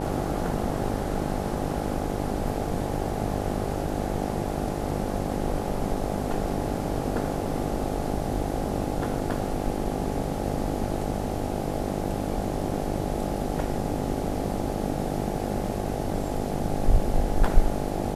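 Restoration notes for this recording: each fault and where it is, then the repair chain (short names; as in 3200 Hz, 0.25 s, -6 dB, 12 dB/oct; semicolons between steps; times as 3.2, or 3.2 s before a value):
buzz 50 Hz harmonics 17 -31 dBFS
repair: de-hum 50 Hz, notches 17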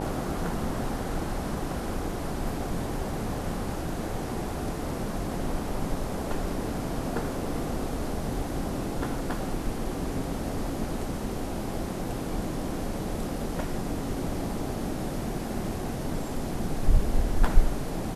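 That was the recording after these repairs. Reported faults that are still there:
none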